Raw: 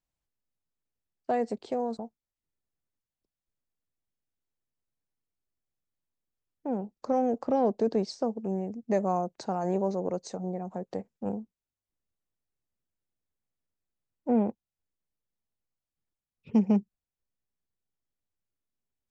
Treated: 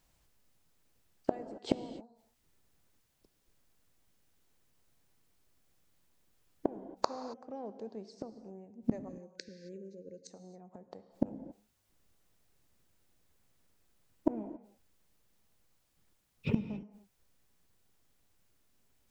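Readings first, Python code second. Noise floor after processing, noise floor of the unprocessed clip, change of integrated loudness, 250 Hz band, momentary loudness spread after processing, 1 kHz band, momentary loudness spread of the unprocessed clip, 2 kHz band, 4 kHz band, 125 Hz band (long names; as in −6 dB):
−75 dBFS, below −85 dBFS, −9.5 dB, −9.0 dB, 17 LU, −11.5 dB, 11 LU, −4.0 dB, −1.5 dB, −6.5 dB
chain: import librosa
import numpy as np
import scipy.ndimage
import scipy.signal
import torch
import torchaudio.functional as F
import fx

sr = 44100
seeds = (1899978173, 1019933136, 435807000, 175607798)

y = fx.gate_flip(x, sr, shuts_db=-31.0, range_db=-35)
y = fx.spec_erase(y, sr, start_s=9.09, length_s=1.21, low_hz=560.0, high_hz=1500.0)
y = fx.rev_gated(y, sr, seeds[0], gate_ms=300, shape='flat', drr_db=11.0)
y = y * librosa.db_to_amplitude(17.0)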